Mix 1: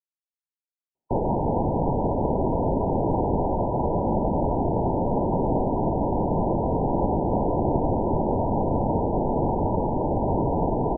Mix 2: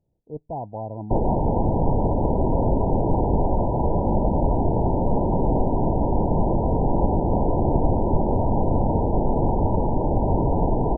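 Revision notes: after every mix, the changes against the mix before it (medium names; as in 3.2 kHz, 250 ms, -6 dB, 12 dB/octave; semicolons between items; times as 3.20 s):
speech: unmuted; master: add bass shelf 86 Hz +10.5 dB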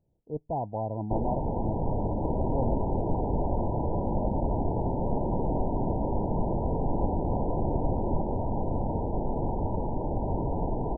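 first sound -8.5 dB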